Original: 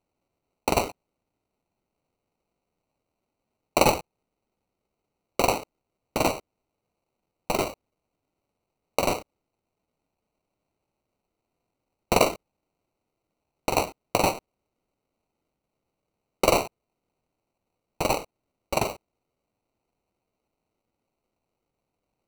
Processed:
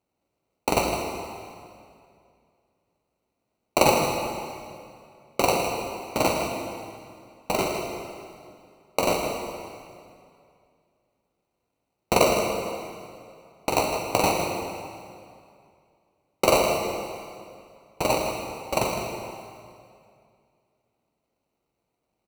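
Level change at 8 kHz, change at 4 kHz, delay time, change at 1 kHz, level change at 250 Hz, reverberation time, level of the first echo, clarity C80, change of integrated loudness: +2.5 dB, +2.5 dB, 0.159 s, +2.5 dB, +2.5 dB, 2.3 s, -9.5 dB, 3.0 dB, +0.5 dB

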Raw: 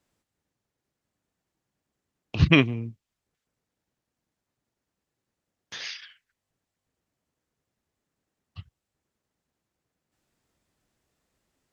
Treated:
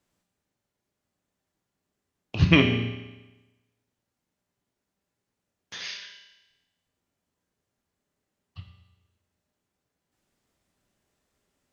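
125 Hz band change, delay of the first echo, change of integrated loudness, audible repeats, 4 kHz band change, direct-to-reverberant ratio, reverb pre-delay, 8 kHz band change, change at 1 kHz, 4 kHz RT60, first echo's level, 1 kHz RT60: +0.5 dB, none, -0.5 dB, none, +1.5 dB, 3.0 dB, 14 ms, n/a, +0.5 dB, 1.0 s, none, 1.1 s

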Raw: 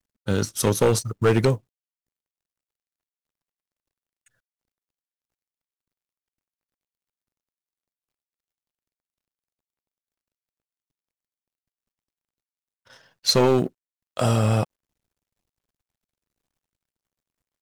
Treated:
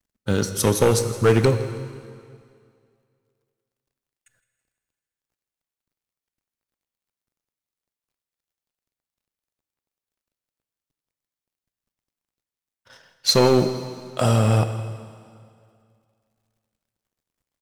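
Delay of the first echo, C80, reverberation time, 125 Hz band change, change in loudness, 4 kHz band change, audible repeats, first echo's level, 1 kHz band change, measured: 0.163 s, 10.5 dB, 2.2 s, +2.5 dB, +2.0 dB, +2.0 dB, 3, -18.5 dB, +2.0 dB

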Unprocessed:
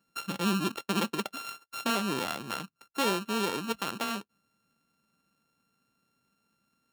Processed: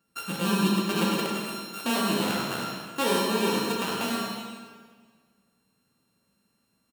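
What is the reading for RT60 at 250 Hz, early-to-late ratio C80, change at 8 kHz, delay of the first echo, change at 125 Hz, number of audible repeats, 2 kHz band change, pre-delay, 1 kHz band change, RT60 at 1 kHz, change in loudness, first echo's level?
1.8 s, 1.0 dB, +5.0 dB, 97 ms, +6.0 dB, 1, +3.5 dB, 10 ms, +3.5 dB, 1.6 s, +4.5 dB, -6.0 dB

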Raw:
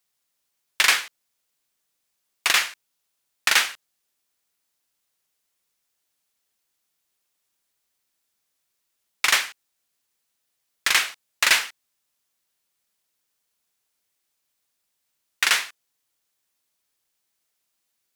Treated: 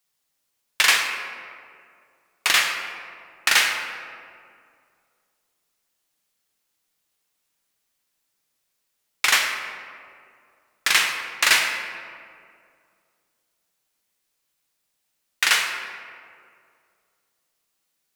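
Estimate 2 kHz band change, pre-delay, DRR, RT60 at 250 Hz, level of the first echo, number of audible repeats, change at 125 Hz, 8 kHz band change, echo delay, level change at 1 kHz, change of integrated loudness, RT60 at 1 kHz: +2.0 dB, 6 ms, 2.0 dB, 2.4 s, none, none, n/a, +1.0 dB, none, +2.0 dB, +0.5 dB, 2.1 s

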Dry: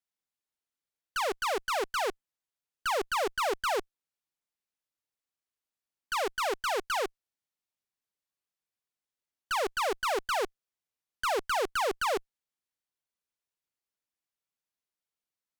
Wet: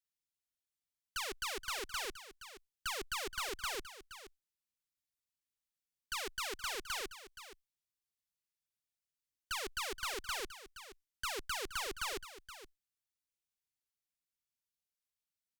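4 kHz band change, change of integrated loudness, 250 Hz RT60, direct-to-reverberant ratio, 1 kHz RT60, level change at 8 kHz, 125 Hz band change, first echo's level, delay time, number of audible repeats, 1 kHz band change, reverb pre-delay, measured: -3.5 dB, -8.5 dB, none, none, none, -2.0 dB, n/a, -13.0 dB, 0.472 s, 1, -13.0 dB, none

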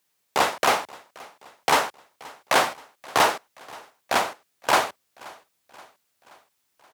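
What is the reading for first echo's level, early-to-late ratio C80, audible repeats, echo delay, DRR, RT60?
-23.0 dB, none, 3, 0.527 s, none, none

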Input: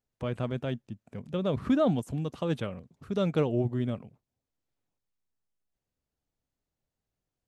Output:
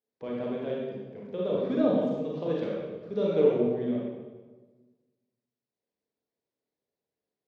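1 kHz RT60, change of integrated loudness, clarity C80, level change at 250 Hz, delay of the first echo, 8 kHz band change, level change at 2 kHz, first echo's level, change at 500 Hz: 1.2 s, +1.5 dB, 2.0 dB, +0.5 dB, none, n/a, -3.5 dB, none, +5.0 dB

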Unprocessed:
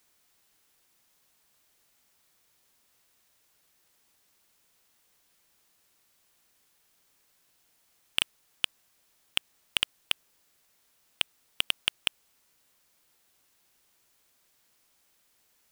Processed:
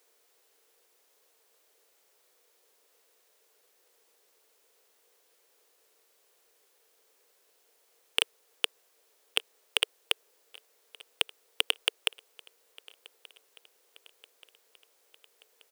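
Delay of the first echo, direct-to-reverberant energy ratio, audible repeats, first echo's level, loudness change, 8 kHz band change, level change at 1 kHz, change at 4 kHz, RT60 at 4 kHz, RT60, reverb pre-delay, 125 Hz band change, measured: 1.18 s, none, 3, -24.0 dB, +0.5 dB, 0.0 dB, +2.0 dB, 0.0 dB, none, none, none, under -15 dB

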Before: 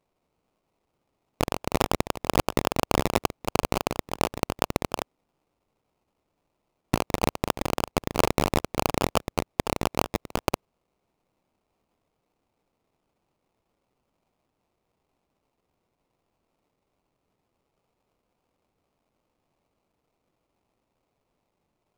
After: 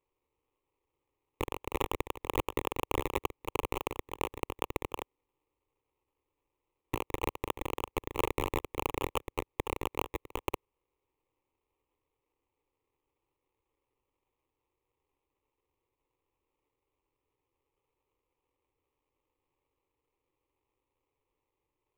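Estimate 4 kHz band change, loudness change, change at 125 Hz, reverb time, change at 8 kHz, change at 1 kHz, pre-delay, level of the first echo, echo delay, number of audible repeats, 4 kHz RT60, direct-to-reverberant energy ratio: -10.0 dB, -8.5 dB, -10.0 dB, none, -12.5 dB, -8.0 dB, none, none, none, none, none, none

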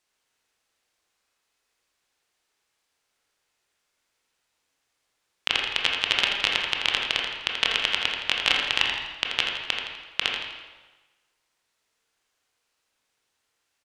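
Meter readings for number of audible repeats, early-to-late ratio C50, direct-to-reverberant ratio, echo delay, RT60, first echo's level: 1, 1.0 dB, -1.5 dB, 83 ms, 1.2 s, -7.0 dB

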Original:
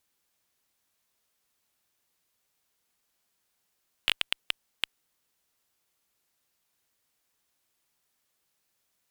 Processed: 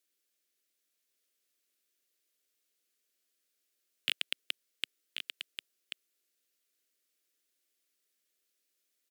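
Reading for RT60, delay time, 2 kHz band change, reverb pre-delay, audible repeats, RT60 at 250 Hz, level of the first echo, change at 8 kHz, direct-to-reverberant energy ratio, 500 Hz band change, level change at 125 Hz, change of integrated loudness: none, 1.085 s, -5.0 dB, none, 1, none, -7.0 dB, -3.5 dB, none, -6.0 dB, under -20 dB, -7.0 dB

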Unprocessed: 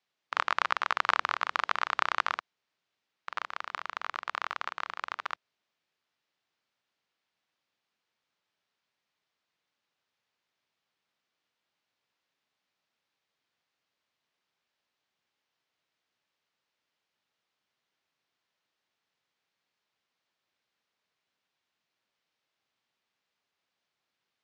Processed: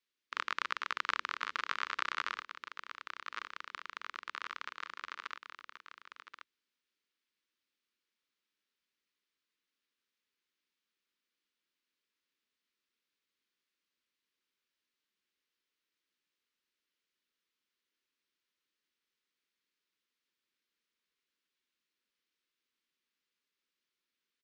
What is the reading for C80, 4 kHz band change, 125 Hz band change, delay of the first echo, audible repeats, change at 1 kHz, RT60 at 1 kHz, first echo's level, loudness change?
none, -4.0 dB, n/a, 1.08 s, 1, -9.0 dB, none, -9.0 dB, -7.5 dB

